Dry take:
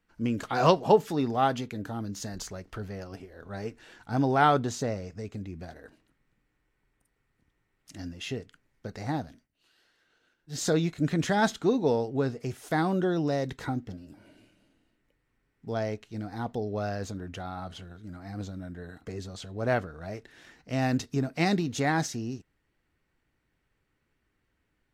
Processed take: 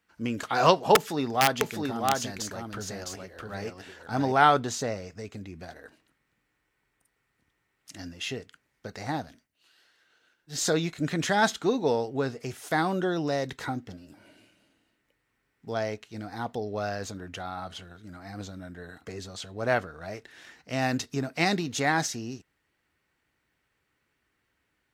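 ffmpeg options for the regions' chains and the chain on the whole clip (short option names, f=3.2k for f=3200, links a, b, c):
-filter_complex "[0:a]asettb=1/sr,asplit=3[a][b][c];[a]atrim=end=0.954[d];[b]atrim=start=0.95:end=4.32,asetpts=PTS-STARTPTS,afade=t=in:d=0.004:c=qsin,afade=t=out:st=3.366:d=0.004:c=qsin,aecho=1:1:659:0.668,atrim=end_sample=148617,aeval=exprs='(mod(5.62*val(0)+1,2)-1)/5.62':c=same[e];[c]atrim=start=4.316[f];[d][e]acrossfade=d=0.004:c1=hsin:c2=qsin[g];[g][f]acrossfade=d=0.004:c1=qsin:c2=hsin,highpass=48,lowshelf=f=490:g=-8.5,volume=4.5dB"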